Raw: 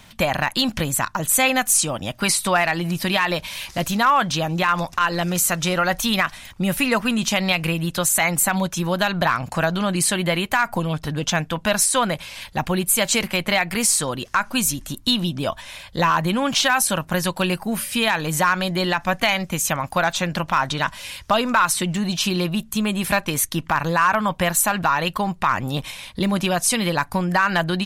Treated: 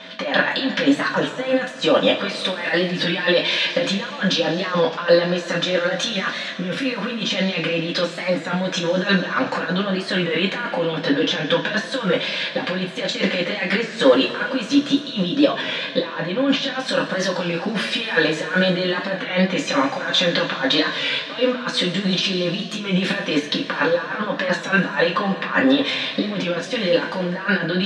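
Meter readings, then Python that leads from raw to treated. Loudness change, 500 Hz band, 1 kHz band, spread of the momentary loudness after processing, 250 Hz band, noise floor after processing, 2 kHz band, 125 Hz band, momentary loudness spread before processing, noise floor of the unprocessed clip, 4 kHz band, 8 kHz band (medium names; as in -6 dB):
0.0 dB, +5.0 dB, -6.0 dB, 6 LU, +2.0 dB, -32 dBFS, +0.5 dB, -2.0 dB, 7 LU, -45 dBFS, +3.0 dB, -15.5 dB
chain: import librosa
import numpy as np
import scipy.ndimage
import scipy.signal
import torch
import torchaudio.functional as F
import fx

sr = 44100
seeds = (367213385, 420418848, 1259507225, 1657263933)

y = fx.over_compress(x, sr, threshold_db=-25.0, ratio=-0.5)
y = fx.cabinet(y, sr, low_hz=200.0, low_slope=24, high_hz=4800.0, hz=(500.0, 820.0, 1700.0, 3600.0), db=(7, -4, 8, 5))
y = fx.rev_double_slope(y, sr, seeds[0], early_s=0.23, late_s=3.0, knee_db=-19, drr_db=-5.0)
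y = y + 10.0 ** (-43.0 / 20.0) * np.sin(2.0 * np.pi * 650.0 * np.arange(len(y)) / sr)
y = fx.record_warp(y, sr, rpm=33.33, depth_cents=100.0)
y = y * librosa.db_to_amplitude(-1.5)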